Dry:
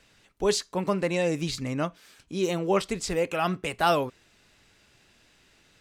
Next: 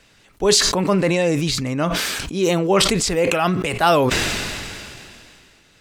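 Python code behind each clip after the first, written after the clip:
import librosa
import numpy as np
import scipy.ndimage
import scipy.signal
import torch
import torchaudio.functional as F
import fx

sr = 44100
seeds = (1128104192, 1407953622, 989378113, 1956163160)

y = fx.sustainer(x, sr, db_per_s=24.0)
y = y * librosa.db_to_amplitude(6.5)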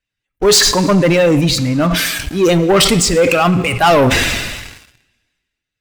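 y = fx.bin_expand(x, sr, power=1.5)
y = fx.rev_plate(y, sr, seeds[0], rt60_s=1.2, hf_ratio=0.9, predelay_ms=0, drr_db=12.5)
y = fx.leveller(y, sr, passes=3)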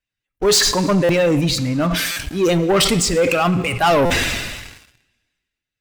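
y = fx.buffer_glitch(x, sr, at_s=(1.04, 2.11, 4.05), block=256, repeats=8)
y = y * librosa.db_to_amplitude(-4.5)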